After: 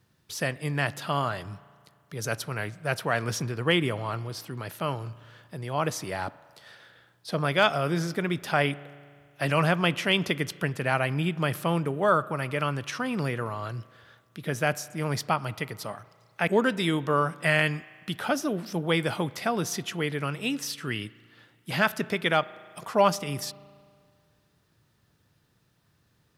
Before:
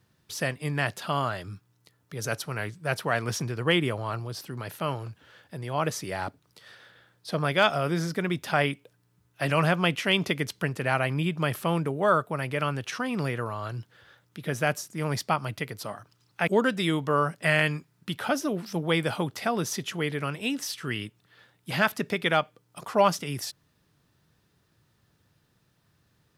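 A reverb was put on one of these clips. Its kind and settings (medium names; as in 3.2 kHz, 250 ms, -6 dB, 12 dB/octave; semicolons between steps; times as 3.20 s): spring tank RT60 2 s, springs 35 ms, chirp 30 ms, DRR 19 dB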